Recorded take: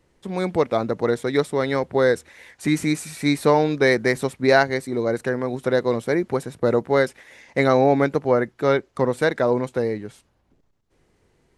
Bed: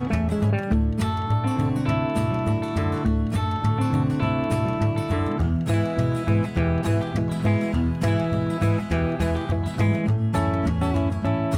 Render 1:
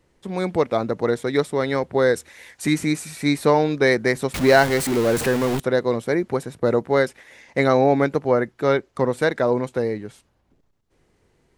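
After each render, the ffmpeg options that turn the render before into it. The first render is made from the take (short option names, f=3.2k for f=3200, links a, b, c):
-filter_complex "[0:a]asettb=1/sr,asplit=3[a][b][c];[a]atrim=end=2.144[d];[b]atrim=start=2.14:end=2.74,asetpts=PTS-STARTPTS,afade=t=in:d=0.004:c=qsin,afade=t=out:st=0.596:d=0.004:c=qsin,highshelf=f=3.9k:g=7[e];[c]atrim=start=2.736[f];[d][e]acrossfade=d=0.004:c1=hsin:c2=qsin[g];[g][f]acrossfade=d=0.004:c1=qsin:c2=hsin,asettb=1/sr,asplit=3[h][i][j];[h]atrim=end=4.344[k];[i]atrim=start=4.34:end=5.6,asetpts=PTS-STARTPTS,afade=t=in:d=0.004:c=qsin,afade=t=out:st=1.256:d=0.004:c=qsin,aeval=exprs='val(0)+0.5*0.0891*sgn(val(0))':c=same[l];[j]atrim=start=5.596[m];[k][l]acrossfade=d=0.004:c1=hsin:c2=qsin[n];[n][m]acrossfade=d=0.004:c1=qsin:c2=hsin"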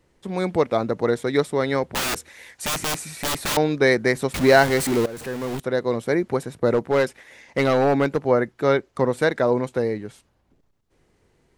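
-filter_complex "[0:a]asettb=1/sr,asplit=3[a][b][c];[a]atrim=end=1.934[d];[b]atrim=start=1.93:end=3.57,asetpts=PTS-STARTPTS,afade=t=in:d=0.004:c=qsin,afade=t=out:st=1.636:d=0.004:c=qsin,aeval=exprs='(mod(9.44*val(0)+1,2)-1)/9.44':c=same[e];[c]atrim=start=3.566[f];[d][e]acrossfade=d=0.004:c1=hsin:c2=qsin[g];[g][f]acrossfade=d=0.004:c1=qsin:c2=hsin,asettb=1/sr,asplit=3[h][i][j];[h]atrim=end=6.734[k];[i]atrim=start=6.73:end=8.25,asetpts=PTS-STARTPTS,afade=t=in:d=0.004:c=qsin,afade=t=out:st=1.516:d=0.004:c=qsin,volume=13.5dB,asoftclip=hard,volume=-13.5dB[l];[j]atrim=start=8.246[m];[k][l]acrossfade=d=0.004:c1=hsin:c2=qsin[n];[n][m]acrossfade=d=0.004:c1=qsin:c2=hsin,asplit=2[o][p];[o]atrim=end=5.06,asetpts=PTS-STARTPTS,afade=t=out:st=5.056:d=0.004:c=hsin:silence=0.125893[q];[p]atrim=start=5.06,asetpts=PTS-STARTPTS,afade=t=in:d=1.05:silence=0.125893[r];[q][r]concat=n=2:v=0:a=1"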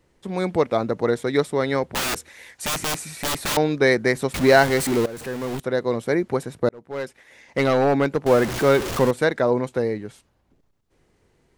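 -filter_complex "[0:a]asettb=1/sr,asplit=3[a][b][c];[a]atrim=end=8.264[d];[b]atrim=start=8.26:end=9.11,asetpts=PTS-STARTPTS,afade=t=in:d=0.004:c=qsin,afade=t=out:st=0.846:d=0.004:c=qsin,aeval=exprs='val(0)+0.5*0.0794*sgn(val(0))':c=same[e];[c]atrim=start=9.106[f];[d][e]acrossfade=d=0.004:c1=hsin:c2=qsin[g];[g][f]acrossfade=d=0.004:c1=qsin:c2=hsin,asplit=2[h][i];[h]atrim=end=6.69,asetpts=PTS-STARTPTS,afade=t=out:st=6.686:d=0.004:c=hsin[j];[i]atrim=start=6.69,asetpts=PTS-STARTPTS,afade=t=in:d=0.92[k];[j][k]concat=n=2:v=0:a=1"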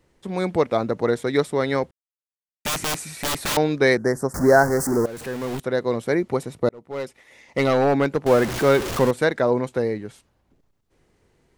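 -filter_complex "[0:a]asettb=1/sr,asplit=3[a][b][c];[a]atrim=end=3.974[d];[b]atrim=start=3.97:end=5.06,asetpts=PTS-STARTPTS,afade=t=in:d=0.004:c=qsin,afade=t=out:st=1.086:d=0.004:c=qsin,asuperstop=centerf=3000:order=8:qfactor=0.85[e];[c]atrim=start=5.056[f];[d][e]acrossfade=d=0.004:c1=hsin:c2=qsin[g];[g][f]acrossfade=d=0.004:c1=qsin:c2=hsin,asettb=1/sr,asplit=3[h][i][j];[h]atrim=end=6.214[k];[i]atrim=start=6.21:end=7.7,asetpts=PTS-STARTPTS,afade=t=in:d=0.004:c=qsin,afade=t=out:st=1.486:d=0.004:c=qsin,bandreject=f=1.6k:w=6.4[l];[j]atrim=start=7.696[m];[k][l]acrossfade=d=0.004:c1=hsin:c2=qsin[n];[n][m]acrossfade=d=0.004:c1=qsin:c2=hsin,asplit=3[o][p][q];[o]atrim=end=1.91,asetpts=PTS-STARTPTS,afade=t=out:st=1.906:d=0.004:c=hsin[r];[p]atrim=start=1.91:end=2.65,asetpts=PTS-STARTPTS,volume=0[s];[q]atrim=start=2.65,asetpts=PTS-STARTPTS,afade=t=in:d=0.004:c=hsin[t];[r][s][t]concat=n=3:v=0:a=1"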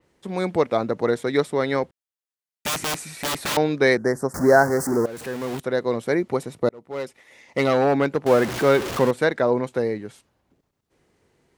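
-af "highpass=f=110:p=1,adynamicequalizer=threshold=0.0112:dfrequency=4800:dqfactor=0.7:tfrequency=4800:tqfactor=0.7:attack=5:release=100:ratio=0.375:range=2:mode=cutabove:tftype=highshelf"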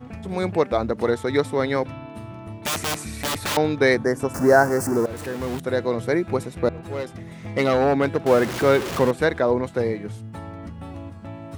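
-filter_complex "[1:a]volume=-13.5dB[a];[0:a][a]amix=inputs=2:normalize=0"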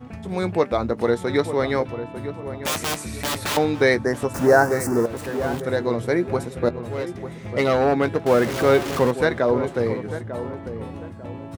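-filter_complex "[0:a]asplit=2[a][b];[b]adelay=17,volume=-13dB[c];[a][c]amix=inputs=2:normalize=0,asplit=2[d][e];[e]adelay=896,lowpass=f=1.3k:p=1,volume=-10.5dB,asplit=2[f][g];[g]adelay=896,lowpass=f=1.3k:p=1,volume=0.35,asplit=2[h][i];[i]adelay=896,lowpass=f=1.3k:p=1,volume=0.35,asplit=2[j][k];[k]adelay=896,lowpass=f=1.3k:p=1,volume=0.35[l];[d][f][h][j][l]amix=inputs=5:normalize=0"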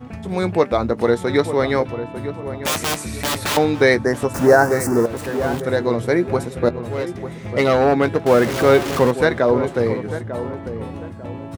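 -af "volume=3.5dB,alimiter=limit=-2dB:level=0:latency=1"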